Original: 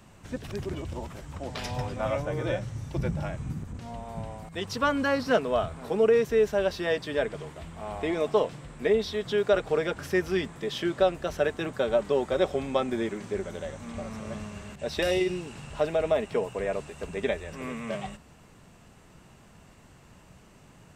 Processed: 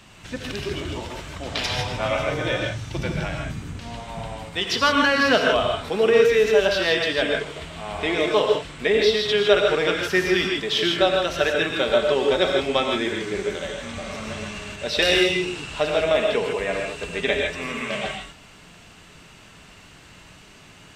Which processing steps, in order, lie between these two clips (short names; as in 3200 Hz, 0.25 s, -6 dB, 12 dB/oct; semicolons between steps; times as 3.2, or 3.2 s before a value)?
bell 3300 Hz +11.5 dB 2.2 oct; non-linear reverb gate 0.18 s rising, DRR 1 dB; gain +1.5 dB